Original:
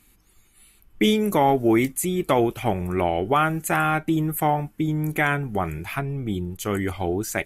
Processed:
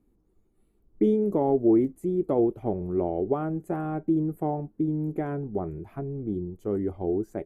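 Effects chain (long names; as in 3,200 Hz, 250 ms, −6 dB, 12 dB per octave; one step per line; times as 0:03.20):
drawn EQ curve 120 Hz 0 dB, 400 Hz +8 dB, 2,500 Hz −23 dB
level −7.5 dB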